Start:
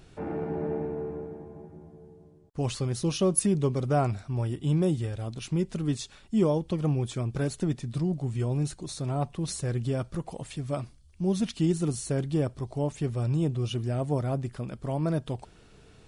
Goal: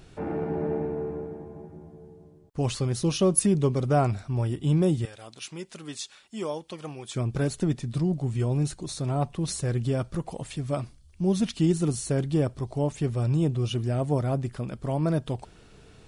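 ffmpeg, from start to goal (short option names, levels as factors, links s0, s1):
-filter_complex "[0:a]asettb=1/sr,asplit=3[s0][s1][s2];[s0]atrim=end=5.054[s3];[s1]atrim=start=5.05:end=7.15,asetpts=PTS-STARTPTS,afade=t=in:d=0.004:c=qsin,afade=t=out:st=2.096:d=0.004:c=qsin,highpass=f=1200:p=1[s4];[s2]atrim=start=7.146[s5];[s3][s4]acrossfade=d=0.004:c1=hsin:c2=qsin[s6];[s6][s5]acrossfade=d=0.004:c1=qsin:c2=hsin,volume=1.33"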